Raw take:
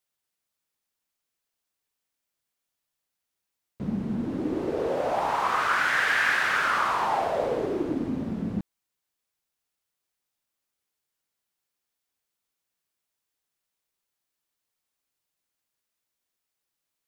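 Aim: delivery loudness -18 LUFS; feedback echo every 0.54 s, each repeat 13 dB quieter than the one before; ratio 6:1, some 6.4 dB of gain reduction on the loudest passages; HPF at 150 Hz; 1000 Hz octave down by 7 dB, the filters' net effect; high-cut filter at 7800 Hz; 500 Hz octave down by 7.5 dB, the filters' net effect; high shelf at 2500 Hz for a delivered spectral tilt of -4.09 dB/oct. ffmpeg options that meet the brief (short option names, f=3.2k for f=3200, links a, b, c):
-af "highpass=150,lowpass=7.8k,equalizer=f=500:t=o:g=-7.5,equalizer=f=1k:t=o:g=-8.5,highshelf=f=2.5k:g=5,acompressor=threshold=-28dB:ratio=6,aecho=1:1:540|1080|1620:0.224|0.0493|0.0108,volume=14.5dB"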